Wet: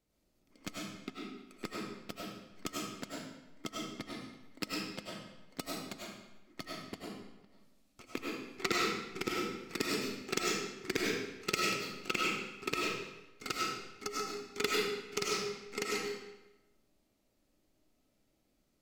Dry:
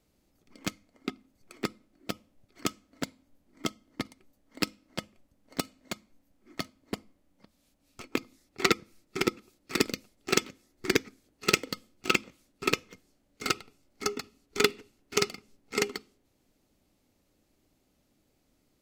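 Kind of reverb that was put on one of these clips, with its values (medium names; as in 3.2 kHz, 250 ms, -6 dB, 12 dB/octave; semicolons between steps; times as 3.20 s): algorithmic reverb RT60 0.98 s, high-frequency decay 0.9×, pre-delay 60 ms, DRR -4.5 dB; trim -10 dB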